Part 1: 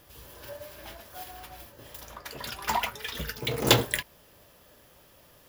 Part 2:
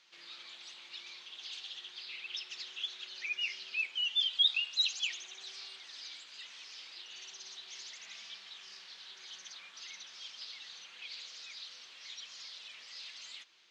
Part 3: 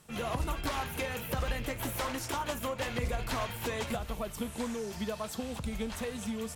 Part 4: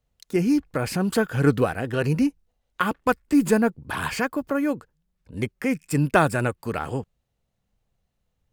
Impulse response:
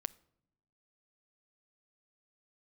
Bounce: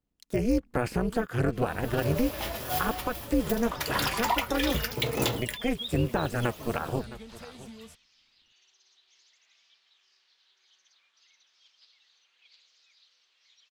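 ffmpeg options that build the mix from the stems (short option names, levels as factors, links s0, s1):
-filter_complex "[0:a]dynaudnorm=f=170:g=5:m=5.01,bandreject=f=1600:w=12,adelay=1550,volume=0.75[s0];[1:a]highpass=280,adelay=1400,volume=0.376[s1];[2:a]adelay=1400,volume=0.299[s2];[3:a]deesser=0.75,tremolo=f=240:d=0.974,volume=1.41,asplit=2[s3][s4];[s4]volume=0.106,aecho=0:1:663:1[s5];[s0][s1][s2][s3][s5]amix=inputs=5:normalize=0,agate=range=0.398:threshold=0.00251:ratio=16:detection=peak,alimiter=limit=0.188:level=0:latency=1:release=309"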